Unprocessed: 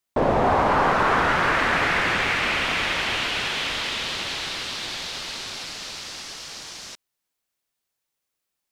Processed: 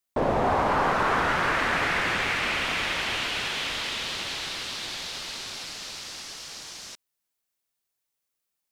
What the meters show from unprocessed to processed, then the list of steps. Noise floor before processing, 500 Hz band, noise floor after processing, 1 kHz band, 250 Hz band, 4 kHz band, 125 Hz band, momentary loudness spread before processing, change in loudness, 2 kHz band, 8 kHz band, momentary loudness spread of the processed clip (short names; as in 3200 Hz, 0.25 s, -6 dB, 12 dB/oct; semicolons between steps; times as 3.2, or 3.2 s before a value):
-82 dBFS, -4.0 dB, -82 dBFS, -4.0 dB, -4.0 dB, -3.0 dB, -4.0 dB, 15 LU, -4.0 dB, -3.5 dB, -2.0 dB, 14 LU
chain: high shelf 7300 Hz +5 dB; gain -4 dB